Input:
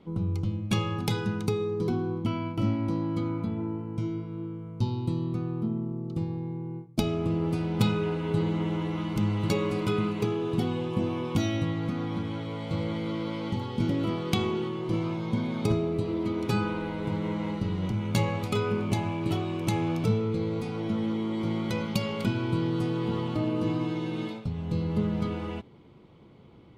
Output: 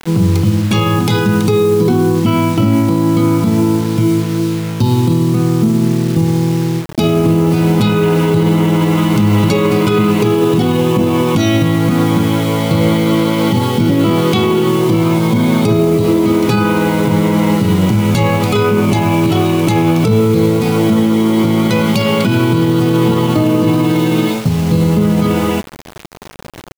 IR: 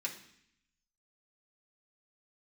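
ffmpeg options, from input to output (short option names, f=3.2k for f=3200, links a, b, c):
-af "highpass=f=100:w=0.5412,highpass=f=100:w=1.3066,acrusher=bits=7:mix=0:aa=0.000001,alimiter=level_in=23.5dB:limit=-1dB:release=50:level=0:latency=1,volume=-3dB"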